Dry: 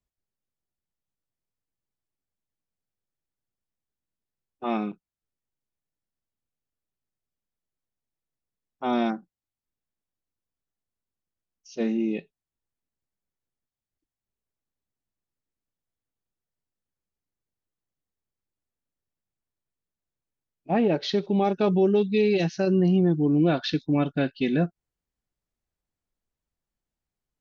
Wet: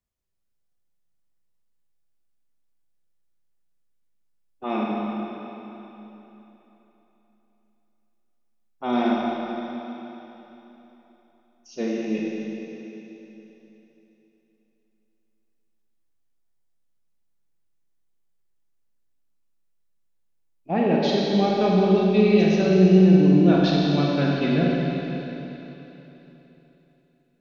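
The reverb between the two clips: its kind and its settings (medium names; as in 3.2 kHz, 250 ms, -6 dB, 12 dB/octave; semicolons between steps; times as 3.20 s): Schroeder reverb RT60 3.5 s, combs from 33 ms, DRR -3.5 dB; trim -1 dB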